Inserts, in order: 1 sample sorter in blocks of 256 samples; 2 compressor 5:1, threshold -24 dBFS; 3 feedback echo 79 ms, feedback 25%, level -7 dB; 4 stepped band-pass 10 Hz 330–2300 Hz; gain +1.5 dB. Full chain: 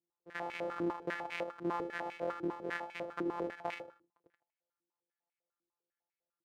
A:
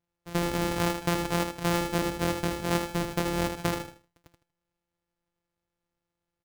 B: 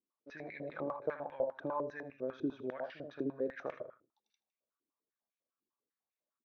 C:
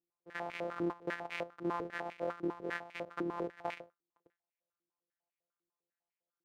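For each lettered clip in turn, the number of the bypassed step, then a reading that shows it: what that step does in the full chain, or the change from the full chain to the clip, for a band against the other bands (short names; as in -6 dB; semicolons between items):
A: 4, 125 Hz band +12.5 dB; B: 1, crest factor change +1.5 dB; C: 3, 125 Hz band +2.0 dB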